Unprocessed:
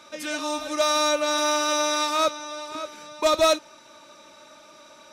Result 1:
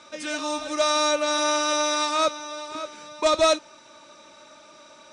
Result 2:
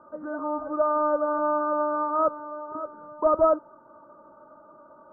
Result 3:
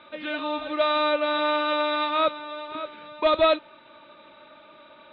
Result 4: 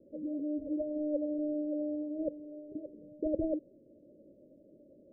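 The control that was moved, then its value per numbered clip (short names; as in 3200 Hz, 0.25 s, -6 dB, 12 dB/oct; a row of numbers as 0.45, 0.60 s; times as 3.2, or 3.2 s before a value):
steep low-pass, frequency: 9700, 1400, 3800, 540 Hz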